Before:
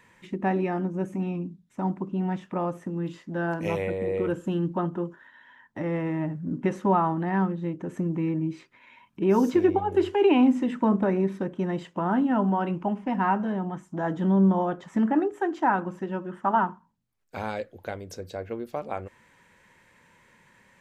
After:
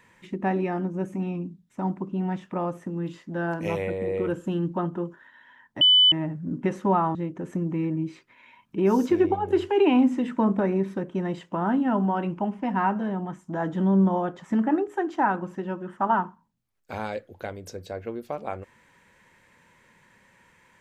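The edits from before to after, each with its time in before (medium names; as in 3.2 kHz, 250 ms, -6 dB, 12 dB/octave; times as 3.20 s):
5.81–6.12 s: bleep 3 kHz -13 dBFS
7.15–7.59 s: delete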